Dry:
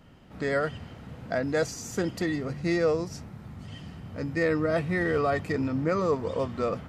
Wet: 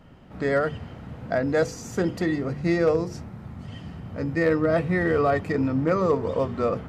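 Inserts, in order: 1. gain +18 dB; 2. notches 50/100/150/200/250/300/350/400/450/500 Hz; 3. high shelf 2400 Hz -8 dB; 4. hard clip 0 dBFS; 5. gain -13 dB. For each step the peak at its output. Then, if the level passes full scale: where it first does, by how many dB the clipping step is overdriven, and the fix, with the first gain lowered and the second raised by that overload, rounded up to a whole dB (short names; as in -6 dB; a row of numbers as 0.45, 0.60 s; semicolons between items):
+3.5, +4.0, +3.5, 0.0, -13.0 dBFS; step 1, 3.5 dB; step 1 +14 dB, step 5 -9 dB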